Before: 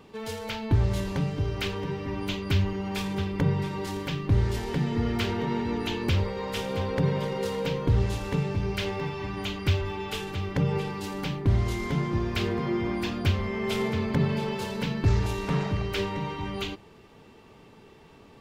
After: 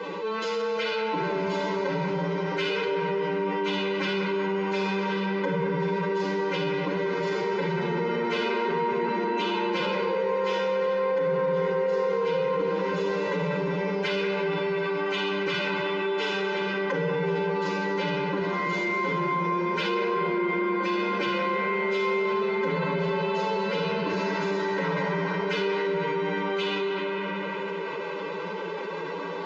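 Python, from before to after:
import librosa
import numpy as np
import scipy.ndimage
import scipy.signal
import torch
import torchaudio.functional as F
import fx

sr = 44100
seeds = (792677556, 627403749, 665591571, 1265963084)

p1 = scipy.signal.sosfilt(scipy.signal.cheby1(5, 1.0, [170.0, 6800.0], 'bandpass', fs=sr, output='sos'), x)
p2 = fx.high_shelf(p1, sr, hz=3300.0, db=-3.5)
p3 = p2 + 0.87 * np.pad(p2, (int(2.0 * sr / 1000.0), 0))[:len(p2)]
p4 = fx.room_shoebox(p3, sr, seeds[0], volume_m3=1100.0, walls='mixed', distance_m=2.1)
p5 = 10.0 ** (-24.0 / 20.0) * np.tanh(p4 / 10.0 ** (-24.0 / 20.0))
p6 = p4 + F.gain(torch.from_numpy(p5), -7.0).numpy()
p7 = fx.stretch_vocoder(p6, sr, factor=1.6)
p8 = fx.bass_treble(p7, sr, bass_db=-5, treble_db=-8)
p9 = fx.notch(p8, sr, hz=3200.0, q=20.0)
p10 = fx.echo_wet_bandpass(p9, sr, ms=190, feedback_pct=73, hz=1100.0, wet_db=-6.5)
p11 = fx.env_flatten(p10, sr, amount_pct=70)
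y = F.gain(torch.from_numpy(p11), -8.0).numpy()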